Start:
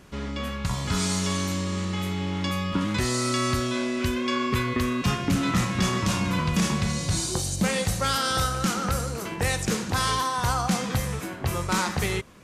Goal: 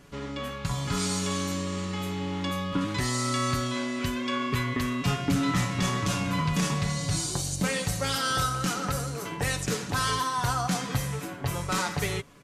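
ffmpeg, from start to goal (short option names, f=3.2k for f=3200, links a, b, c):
-af "aecho=1:1:7:0.58,volume=-3.5dB"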